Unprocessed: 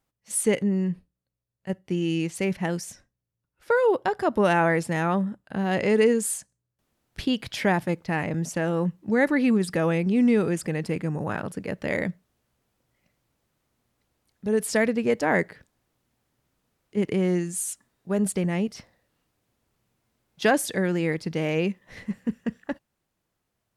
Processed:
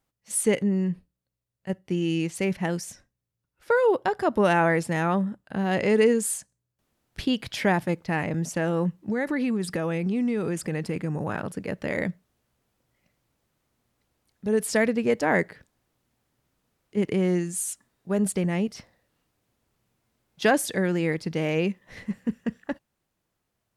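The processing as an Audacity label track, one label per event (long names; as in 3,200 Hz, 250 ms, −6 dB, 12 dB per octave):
8.950000	11.970000	downward compressor, threshold −22 dBFS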